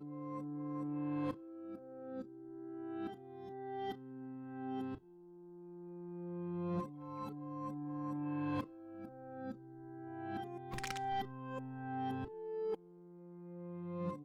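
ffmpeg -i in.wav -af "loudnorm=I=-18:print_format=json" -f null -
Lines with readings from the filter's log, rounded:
"input_i" : "-43.7",
"input_tp" : "-29.7",
"input_lra" : "3.1",
"input_thresh" : "-54.0",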